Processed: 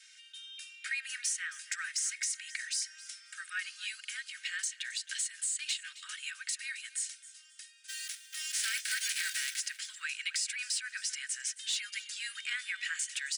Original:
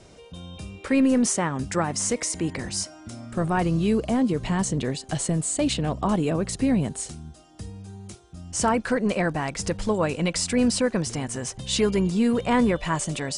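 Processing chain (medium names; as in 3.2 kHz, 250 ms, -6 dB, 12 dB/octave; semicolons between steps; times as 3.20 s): 7.88–9.59 s: formants flattened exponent 0.3; steep high-pass 1.5 kHz 72 dB/octave; comb 3.2 ms, depth 43%; compression 3:1, threshold -32 dBFS, peak gain reduction 8.5 dB; saturation -20.5 dBFS, distortion -27 dB; feedback delay 268 ms, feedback 28%, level -17.5 dB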